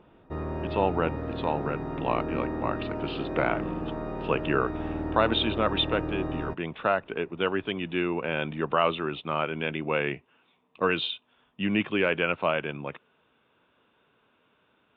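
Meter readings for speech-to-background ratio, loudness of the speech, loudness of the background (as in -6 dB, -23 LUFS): 5.0 dB, -29.0 LUFS, -34.0 LUFS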